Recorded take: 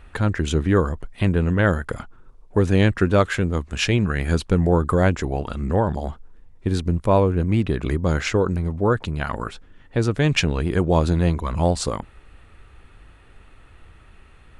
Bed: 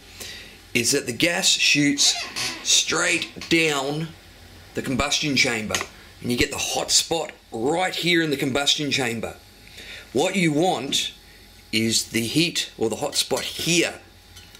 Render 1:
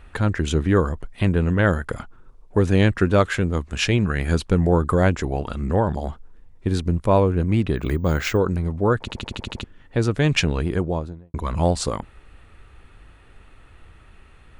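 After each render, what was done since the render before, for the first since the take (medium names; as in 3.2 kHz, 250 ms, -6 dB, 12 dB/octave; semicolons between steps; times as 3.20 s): 7.76–8.37 s: careless resampling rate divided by 2×, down none, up hold; 9.00 s: stutter in place 0.08 s, 8 plays; 10.52–11.34 s: studio fade out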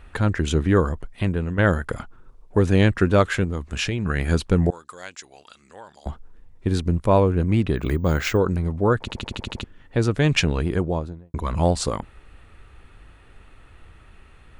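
0.93–1.58 s: fade out, to -8 dB; 3.44–4.06 s: compression 4:1, threshold -21 dBFS; 4.70–6.06 s: band-pass filter 5.9 kHz, Q 1.1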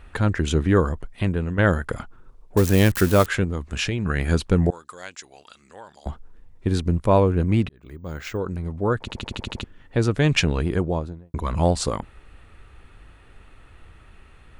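2.57–3.26 s: zero-crossing glitches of -16.5 dBFS; 7.69–9.39 s: fade in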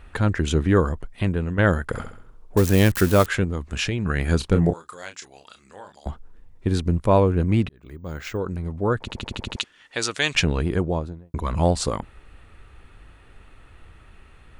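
1.88–2.60 s: flutter echo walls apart 11.4 m, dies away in 0.54 s; 4.37–5.92 s: doubling 30 ms -7.5 dB; 9.56–10.35 s: frequency weighting ITU-R 468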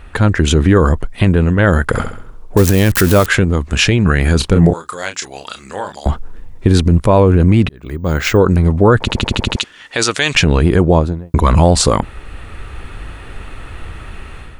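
level rider gain up to 9.5 dB; loudness maximiser +9 dB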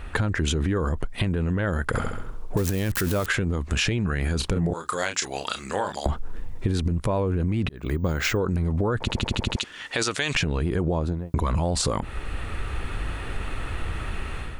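peak limiter -7.5 dBFS, peak gain reduction 6.5 dB; compression, threshold -21 dBFS, peak gain reduction 10 dB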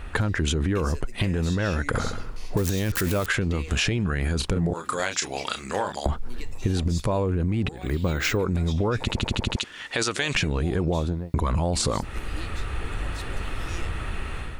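add bed -22 dB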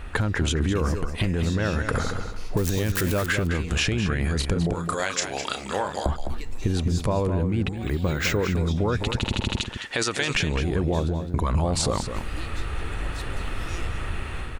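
echo from a far wall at 36 m, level -8 dB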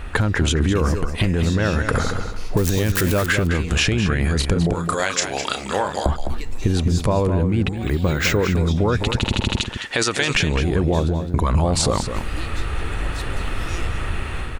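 trim +5 dB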